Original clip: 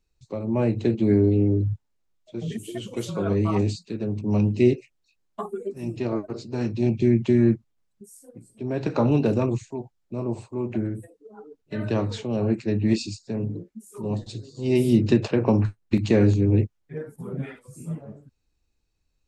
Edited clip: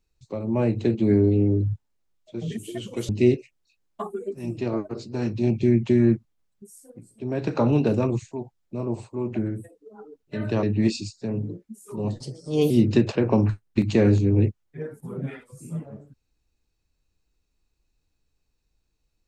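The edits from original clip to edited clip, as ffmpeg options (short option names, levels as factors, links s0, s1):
-filter_complex "[0:a]asplit=5[s0][s1][s2][s3][s4];[s0]atrim=end=3.092[s5];[s1]atrim=start=4.478:end=12.022[s6];[s2]atrim=start=12.688:end=14.264[s7];[s3]atrim=start=14.26:end=14.86,asetpts=PTS-STARTPTS,asetrate=52479,aresample=44100,atrim=end_sample=22235,asetpts=PTS-STARTPTS[s8];[s4]atrim=start=14.856[s9];[s5][s6]acrossfade=d=0.004:c1=hsin:c2=hsin[s10];[s10][s7]acrossfade=d=0.004:c1=hsin:c2=hsin[s11];[s11][s8]acrossfade=d=0.004:c1=hsin:c2=hsin[s12];[s12][s9]acrossfade=d=0.004:c1=hsin:c2=hsin"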